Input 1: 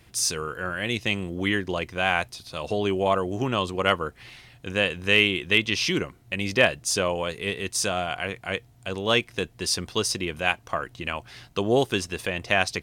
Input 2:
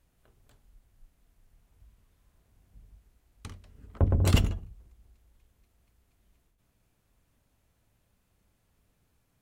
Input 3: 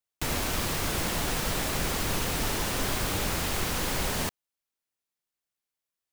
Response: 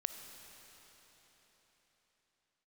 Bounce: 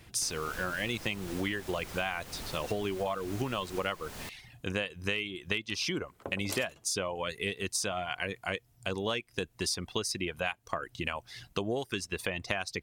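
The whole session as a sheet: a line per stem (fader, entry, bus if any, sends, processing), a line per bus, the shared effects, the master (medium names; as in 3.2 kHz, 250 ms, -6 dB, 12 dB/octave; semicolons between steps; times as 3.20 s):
+0.5 dB, 0.00 s, no send, reverb removal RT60 0.77 s
-6.0 dB, 2.25 s, no send, high-pass 360 Hz 12 dB/octave; treble shelf 3.4 kHz +11 dB
-3.0 dB, 0.00 s, no send, auto duck -10 dB, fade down 0.25 s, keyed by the first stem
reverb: none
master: compression 10:1, threshold -29 dBFS, peak gain reduction 16.5 dB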